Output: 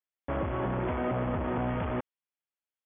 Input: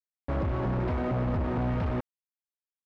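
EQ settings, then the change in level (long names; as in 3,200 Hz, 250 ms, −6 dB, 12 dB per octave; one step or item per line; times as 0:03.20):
linear-phase brick-wall low-pass 3,500 Hz
low-shelf EQ 190 Hz −9.5 dB
+2.0 dB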